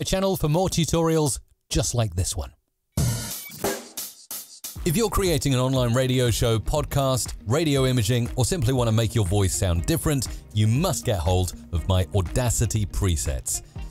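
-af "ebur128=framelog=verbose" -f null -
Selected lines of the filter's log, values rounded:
Integrated loudness:
  I:         -23.8 LUFS
  Threshold: -34.0 LUFS
Loudness range:
  LRA:         5.0 LU
  Threshold: -44.0 LUFS
  LRA low:   -27.5 LUFS
  LRA high:  -22.6 LUFS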